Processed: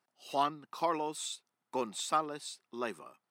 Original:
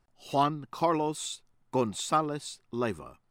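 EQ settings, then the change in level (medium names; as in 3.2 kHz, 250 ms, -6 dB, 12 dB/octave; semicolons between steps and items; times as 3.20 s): high-pass 160 Hz 24 dB/octave; bass shelf 390 Hz -10.5 dB; band-stop 6.9 kHz, Q 21; -2.5 dB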